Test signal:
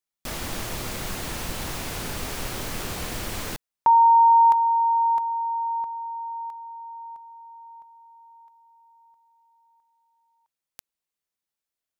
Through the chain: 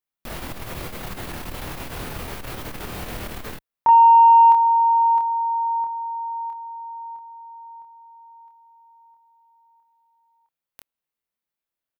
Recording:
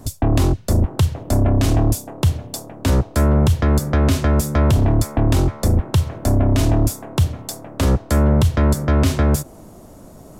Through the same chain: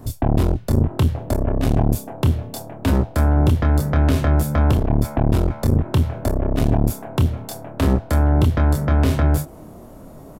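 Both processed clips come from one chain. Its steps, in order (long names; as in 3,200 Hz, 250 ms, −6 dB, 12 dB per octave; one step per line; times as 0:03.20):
parametric band 6,800 Hz −8.5 dB 1.5 octaves
double-tracking delay 26 ms −4 dB
saturating transformer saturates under 210 Hz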